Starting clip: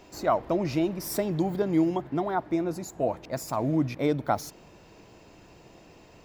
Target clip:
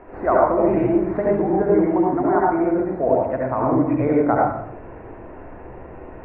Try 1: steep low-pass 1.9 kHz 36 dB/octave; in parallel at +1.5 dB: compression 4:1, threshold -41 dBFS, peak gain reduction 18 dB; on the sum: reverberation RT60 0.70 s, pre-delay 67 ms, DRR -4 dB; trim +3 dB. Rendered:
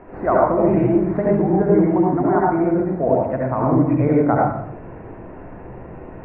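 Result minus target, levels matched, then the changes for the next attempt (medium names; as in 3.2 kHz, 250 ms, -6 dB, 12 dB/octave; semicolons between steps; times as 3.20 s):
125 Hz band +5.5 dB
add after steep low-pass: peaking EQ 160 Hz -9.5 dB 0.93 oct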